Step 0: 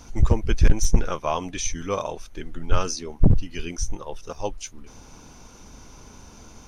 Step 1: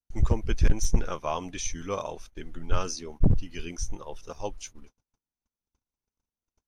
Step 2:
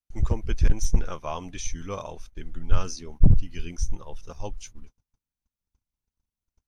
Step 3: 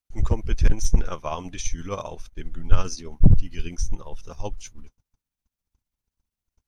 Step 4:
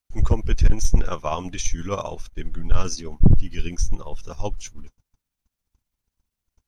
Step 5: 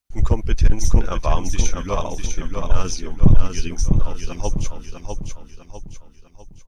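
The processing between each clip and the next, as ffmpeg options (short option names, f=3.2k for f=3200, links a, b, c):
-af "agate=range=-47dB:threshold=-38dB:ratio=16:detection=peak,volume=-5dB"
-af "asubboost=boost=2.5:cutoff=220,volume=-2dB"
-af "tremolo=f=15:d=0.46,volume=4.5dB"
-af "asoftclip=type=tanh:threshold=-9dB,volume=4dB"
-af "aecho=1:1:650|1300|1950|2600|3250:0.562|0.236|0.0992|0.0417|0.0175,volume=1.5dB"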